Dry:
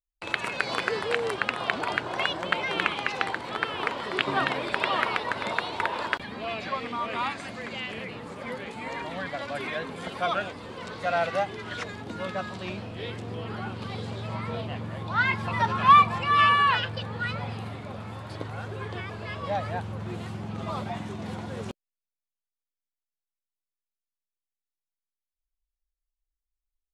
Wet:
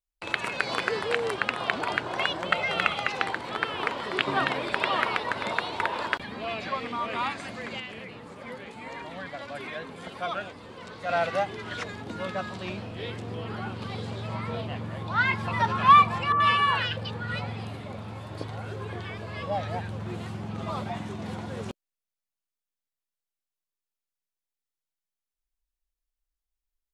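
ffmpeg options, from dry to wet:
-filter_complex "[0:a]asettb=1/sr,asplit=3[s0][s1][s2];[s0]atrim=end=2.504[s3];[s1]atrim=start=2.5:end=3.08,asetpts=PTS-STARTPTS,afade=t=in:d=0.004:c=qsin,afade=t=out:st=0.576:d=0.004:c=qsin,aecho=1:1:1.5:0.56,atrim=end_sample=25578[s4];[s2]atrim=start=3.076[s5];[s3][s4]acrossfade=d=0.004:c1=hsin:c2=qsin[s6];[s6][s5]acrossfade=d=0.004:c1=qsin:c2=hsin,asettb=1/sr,asplit=3[s7][s8][s9];[s7]atrim=end=16.324[s10];[s8]atrim=start=16.32:end=19.99,asetpts=PTS-STARTPTS,afade=t=in:d=0.004:c=qsin,afade=t=out:st=3.666:d=0.004:c=qsin,acrossover=split=1400[s11][s12];[s12]adelay=80[s13];[s11][s13]amix=inputs=2:normalize=0,atrim=end_sample=161847[s14];[s9]atrim=start=19.986[s15];[s10][s14]acrossfade=d=0.004:c1=hsin:c2=qsin[s16];[s16][s15]acrossfade=d=0.004:c1=qsin:c2=hsin,asplit=3[s17][s18][s19];[s17]atrim=end=7.802[s20];[s18]atrim=start=7.798:end=11.092,asetpts=PTS-STARTPTS,volume=0.596[s21];[s19]atrim=start=11.088[s22];[s20][s21]acrossfade=d=0.004:c1=hsin:c2=hsin[s23];[s23][s22]acrossfade=d=0.004:c1=hsin:c2=hsin"

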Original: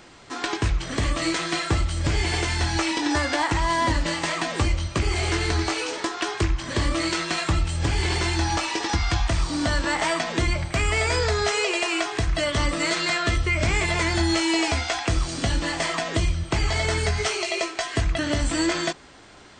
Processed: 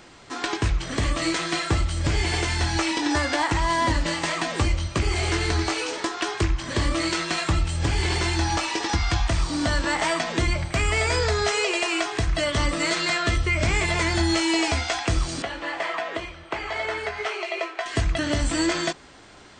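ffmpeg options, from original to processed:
-filter_complex "[0:a]asettb=1/sr,asplit=3[s0][s1][s2];[s0]atrim=end=15.424[s3];[s1]atrim=start=15.42:end=17.86,asetpts=PTS-STARTPTS,afade=t=in:d=0.004:c=qsin,afade=t=out:st=2.436:d=0.004:c=qsin,acrossover=split=360 3100:gain=0.0891 1 0.126[s4][s5][s6];[s4][s5][s6]amix=inputs=3:normalize=0[s7];[s2]atrim=start=17.856[s8];[s3][s7]acrossfade=d=0.004:c1=hsin:c2=qsin[s9];[s9][s8]acrossfade=d=0.004:c1=qsin:c2=hsin"

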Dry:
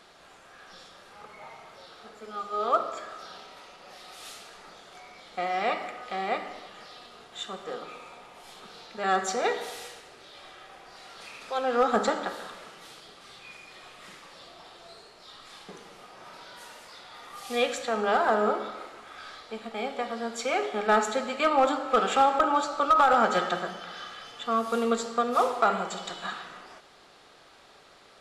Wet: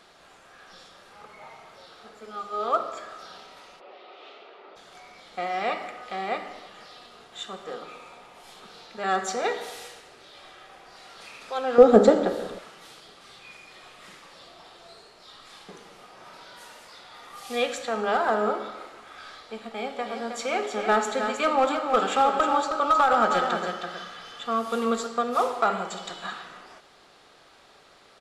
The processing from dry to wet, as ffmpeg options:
-filter_complex "[0:a]asplit=3[s0][s1][s2];[s0]afade=t=out:st=3.79:d=0.02[s3];[s1]highpass=f=270:w=0.5412,highpass=f=270:w=1.3066,equalizer=f=390:t=q:w=4:g=8,equalizer=f=590:t=q:w=4:g=4,equalizer=f=1700:t=q:w=4:g=-7,lowpass=f=3200:w=0.5412,lowpass=f=3200:w=1.3066,afade=t=in:st=3.79:d=0.02,afade=t=out:st=4.75:d=0.02[s4];[s2]afade=t=in:st=4.75:d=0.02[s5];[s3][s4][s5]amix=inputs=3:normalize=0,asettb=1/sr,asplit=3[s6][s7][s8];[s6]atrim=end=11.784[s9];[s7]atrim=start=11.78:end=12.59,asetpts=PTS-STARTPTS,afade=t=in:d=0.004:c=qsin,afade=t=out:st=0.806:d=0.004:c=qsin,lowshelf=f=710:t=q:w=1.5:g=11[s10];[s8]atrim=start=12.586[s11];[s9][s10]acrossfade=d=0.004:c1=hsin:c2=qsin[s12];[s12][s11]acrossfade=d=0.004:c1=qsin:c2=hsin,asplit=3[s13][s14][s15];[s13]afade=t=out:st=20.05:d=0.02[s16];[s14]aecho=1:1:315:0.447,afade=t=in:st=20.05:d=0.02,afade=t=out:st=25.06:d=0.02[s17];[s15]afade=t=in:st=25.06:d=0.02[s18];[s16][s17][s18]amix=inputs=3:normalize=0"

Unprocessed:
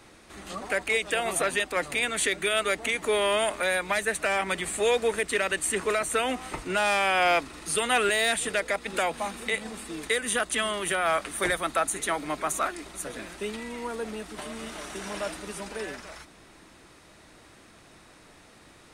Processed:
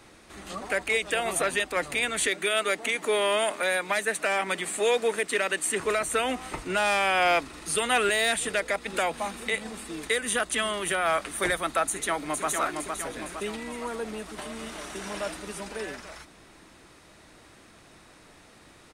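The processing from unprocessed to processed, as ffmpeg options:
-filter_complex "[0:a]asettb=1/sr,asplit=3[s0][s1][s2];[s0]atrim=end=2.284[s3];[s1]atrim=start=2.28:end=5.8,asetpts=PTS-STARTPTS,afade=t=in:d=0.004:c=qsin,afade=t=out:st=3.516:d=0.004:c=qsin,highpass=180[s4];[s2]atrim=start=5.796[s5];[s3][s4]acrossfade=d=0.004:c1=hsin:c2=qsin[s6];[s6][s5]acrossfade=d=0.004:c1=qsin:c2=hsin,asplit=2[s7][s8];[s8]afade=t=in:st=11.86:d=0.01,afade=t=out:st=12.48:d=0.01,aecho=0:1:460|920|1380|1840|2300|2760|3220:0.595662|0.327614|0.180188|0.0991033|0.0545068|0.0299787|0.0164883[s9];[s7][s9]amix=inputs=2:normalize=0"

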